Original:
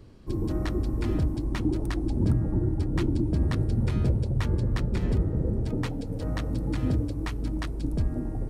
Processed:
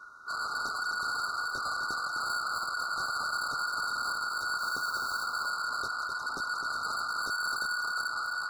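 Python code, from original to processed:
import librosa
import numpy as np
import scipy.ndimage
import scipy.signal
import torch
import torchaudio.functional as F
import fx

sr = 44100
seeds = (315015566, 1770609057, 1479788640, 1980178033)

y = fx.octave_divider(x, sr, octaves=1, level_db=-1.0)
y = fx.low_shelf(y, sr, hz=240.0, db=7.5, at=(7.12, 7.78))
y = y * np.sin(2.0 * np.pi * 1500.0 * np.arange(len(y)) / sr)
y = 10.0 ** (-32.5 / 20.0) * np.tanh(y / 10.0 ** (-32.5 / 20.0))
y = fx.mod_noise(y, sr, seeds[0], snr_db=20, at=(4.59, 5.23), fade=0.02)
y = fx.brickwall_bandstop(y, sr, low_hz=1500.0, high_hz=3700.0)
y = y + 10.0 ** (-7.0 / 20.0) * np.pad(y, (int(257 * sr / 1000.0), 0))[:len(y)]
y = F.gain(torch.from_numpy(y), 4.0).numpy()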